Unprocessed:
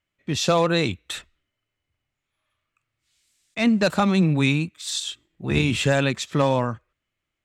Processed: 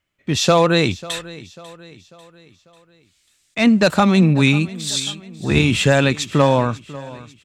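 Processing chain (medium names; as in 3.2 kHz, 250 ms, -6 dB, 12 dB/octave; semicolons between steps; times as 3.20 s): feedback delay 544 ms, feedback 47%, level -19 dB; trim +5.5 dB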